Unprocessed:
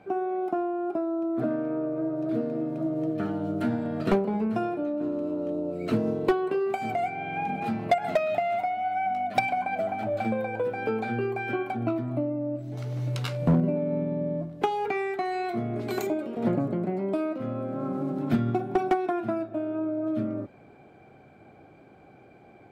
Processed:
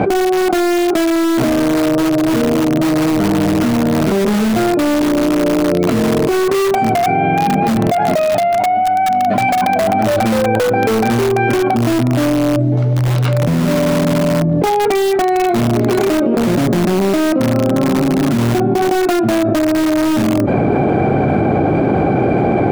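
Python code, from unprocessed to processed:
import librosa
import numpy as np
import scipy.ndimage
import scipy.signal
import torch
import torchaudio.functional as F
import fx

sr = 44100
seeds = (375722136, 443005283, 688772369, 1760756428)

p1 = fx.highpass(x, sr, hz=290.0, slope=6)
p2 = fx.tilt_eq(p1, sr, slope=-4.0)
p3 = (np.mod(10.0 ** (21.0 / 20.0) * p2 + 1.0, 2.0) - 1.0) / 10.0 ** (21.0 / 20.0)
p4 = p2 + (p3 * librosa.db_to_amplitude(-6.0))
y = fx.env_flatten(p4, sr, amount_pct=100)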